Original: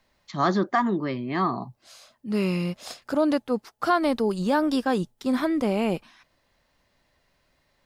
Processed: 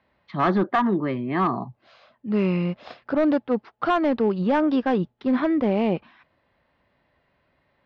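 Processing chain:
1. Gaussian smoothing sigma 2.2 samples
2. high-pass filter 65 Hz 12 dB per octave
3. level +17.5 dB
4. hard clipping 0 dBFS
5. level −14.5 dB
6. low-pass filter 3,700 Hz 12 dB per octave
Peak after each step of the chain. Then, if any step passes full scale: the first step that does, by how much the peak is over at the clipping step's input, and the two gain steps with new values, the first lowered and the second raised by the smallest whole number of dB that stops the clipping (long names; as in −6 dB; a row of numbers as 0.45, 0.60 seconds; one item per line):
−11.0, −11.0, +6.5, 0.0, −14.5, −14.0 dBFS
step 3, 6.5 dB
step 3 +10.5 dB, step 5 −7.5 dB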